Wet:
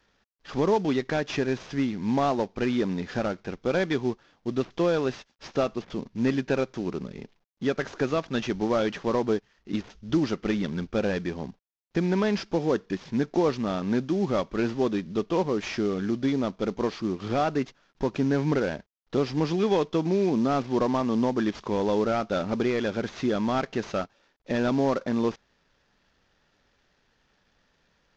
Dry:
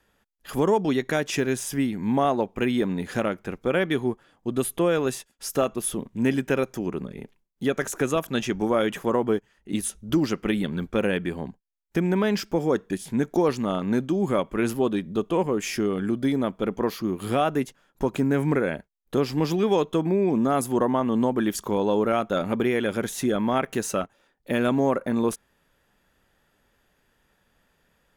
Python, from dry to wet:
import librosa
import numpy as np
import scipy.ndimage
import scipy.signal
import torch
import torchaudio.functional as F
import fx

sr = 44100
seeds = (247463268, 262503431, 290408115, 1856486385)

y = fx.cvsd(x, sr, bps=32000)
y = y * librosa.db_to_amplitude(-1.5)